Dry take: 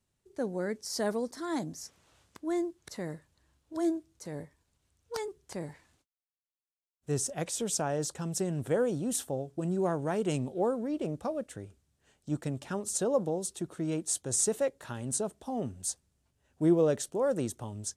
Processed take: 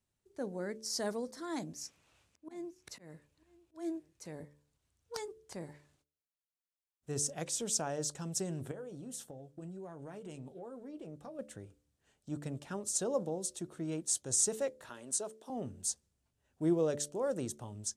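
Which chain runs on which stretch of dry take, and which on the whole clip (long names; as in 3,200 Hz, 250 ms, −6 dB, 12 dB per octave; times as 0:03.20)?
0:01.56–0:04.32: parametric band 2,500 Hz +7.5 dB 0.36 octaves + volume swells 248 ms + single-tap delay 947 ms −22 dB
0:08.71–0:11.39: downward compressor, threshold −33 dBFS + flanger 1.3 Hz, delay 6.1 ms, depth 1.1 ms, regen −53%
0:14.89–0:15.50: high-pass filter 340 Hz + notch filter 800 Hz, Q 11
whole clip: hum removal 73.17 Hz, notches 8; dynamic equaliser 6,100 Hz, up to +6 dB, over −49 dBFS, Q 0.92; level −5.5 dB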